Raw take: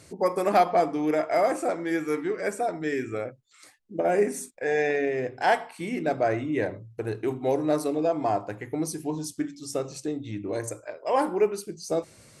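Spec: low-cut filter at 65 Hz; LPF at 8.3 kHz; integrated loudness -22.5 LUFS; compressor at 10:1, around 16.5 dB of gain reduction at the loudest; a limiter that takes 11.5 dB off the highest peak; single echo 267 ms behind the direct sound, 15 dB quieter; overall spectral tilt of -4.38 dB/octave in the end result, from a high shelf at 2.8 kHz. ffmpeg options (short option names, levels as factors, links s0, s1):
-af "highpass=65,lowpass=8300,highshelf=f=2800:g=-8,acompressor=threshold=0.02:ratio=10,alimiter=level_in=2.99:limit=0.0631:level=0:latency=1,volume=0.335,aecho=1:1:267:0.178,volume=10"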